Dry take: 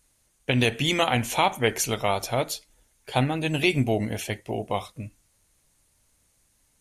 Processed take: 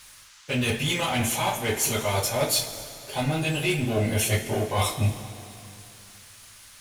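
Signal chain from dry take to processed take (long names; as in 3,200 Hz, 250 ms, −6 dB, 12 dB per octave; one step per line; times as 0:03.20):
high-shelf EQ 7,800 Hz +9 dB
reversed playback
downward compressor 16 to 1, threshold −35 dBFS, peak gain reduction 20 dB
reversed playback
leveller curve on the samples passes 2
in parallel at −11.5 dB: bit-depth reduction 8 bits, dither none
on the sum: coupled-rooms reverb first 0.21 s, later 2.8 s, from −21 dB, DRR −10 dB
noise in a band 1,000–7,200 Hz −49 dBFS
level −3.5 dB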